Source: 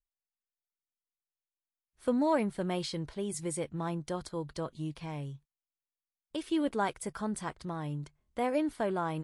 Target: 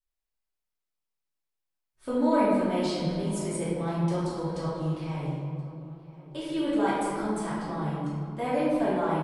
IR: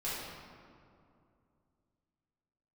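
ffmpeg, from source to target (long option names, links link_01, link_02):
-filter_complex "[0:a]asplit=2[link_01][link_02];[link_02]adelay=1026,lowpass=frequency=2900:poles=1,volume=-19.5dB,asplit=2[link_03][link_04];[link_04]adelay=1026,lowpass=frequency=2900:poles=1,volume=0.45,asplit=2[link_05][link_06];[link_06]adelay=1026,lowpass=frequency=2900:poles=1,volume=0.45[link_07];[link_01][link_03][link_05][link_07]amix=inputs=4:normalize=0[link_08];[1:a]atrim=start_sample=2205[link_09];[link_08][link_09]afir=irnorm=-1:irlink=0"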